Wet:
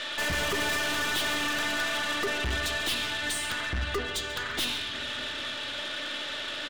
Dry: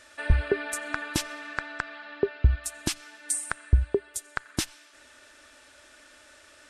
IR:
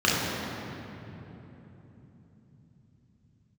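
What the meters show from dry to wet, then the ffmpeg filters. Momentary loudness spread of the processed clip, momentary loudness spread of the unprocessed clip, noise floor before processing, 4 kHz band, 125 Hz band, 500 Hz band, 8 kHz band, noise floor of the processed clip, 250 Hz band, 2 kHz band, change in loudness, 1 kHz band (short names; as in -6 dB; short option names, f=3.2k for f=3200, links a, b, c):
6 LU, 10 LU, -55 dBFS, +11.5 dB, -10.0 dB, -2.5 dB, -2.0 dB, -36 dBFS, -1.0 dB, +6.5 dB, +0.5 dB, +5.5 dB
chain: -filter_complex "[0:a]highpass=190,bandreject=f=244.7:t=h:w=4,bandreject=f=489.4:t=h:w=4,bandreject=f=734.1:t=h:w=4,bandreject=f=978.8:t=h:w=4,bandreject=f=1.2235k:t=h:w=4,bandreject=f=1.4682k:t=h:w=4,bandreject=f=1.7129k:t=h:w=4,bandreject=f=1.9576k:t=h:w=4,bandreject=f=2.2023k:t=h:w=4,bandreject=f=2.447k:t=h:w=4,bandreject=f=2.6917k:t=h:w=4,bandreject=f=2.9364k:t=h:w=4,bandreject=f=3.1811k:t=h:w=4,bandreject=f=3.4258k:t=h:w=4,bandreject=f=3.6705k:t=h:w=4,bandreject=f=3.9152k:t=h:w=4,bandreject=f=4.1599k:t=h:w=4,bandreject=f=4.4046k:t=h:w=4,bandreject=f=4.6493k:t=h:w=4,bandreject=f=4.894k:t=h:w=4,bandreject=f=5.1387k:t=h:w=4,bandreject=f=5.3834k:t=h:w=4,bandreject=f=5.6281k:t=h:w=4,bandreject=f=5.8728k:t=h:w=4,bandreject=f=6.1175k:t=h:w=4,bandreject=f=6.3622k:t=h:w=4,bandreject=f=6.6069k:t=h:w=4,bandreject=f=6.8516k:t=h:w=4,bandreject=f=7.0963k:t=h:w=4,bandreject=f=7.341k:t=h:w=4,bandreject=f=7.5857k:t=h:w=4,bandreject=f=7.8304k:t=h:w=4,bandreject=f=8.0751k:t=h:w=4,bandreject=f=8.3198k:t=h:w=4,bandreject=f=8.5645k:t=h:w=4,bandreject=f=8.8092k:t=h:w=4,aeval=exprs='0.335*sin(PI/2*4.47*val(0)/0.335)':c=same,lowpass=f=3.5k:t=q:w=3.9,aeval=exprs='(tanh(25.1*val(0)+0.25)-tanh(0.25))/25.1':c=same,asplit=2[a][b];[b]adelay=139.9,volume=-16dB,highshelf=f=4k:g=-3.15[c];[a][c]amix=inputs=2:normalize=0,asplit=2[d][e];[1:a]atrim=start_sample=2205[f];[e][f]afir=irnorm=-1:irlink=0,volume=-26.5dB[g];[d][g]amix=inputs=2:normalize=0"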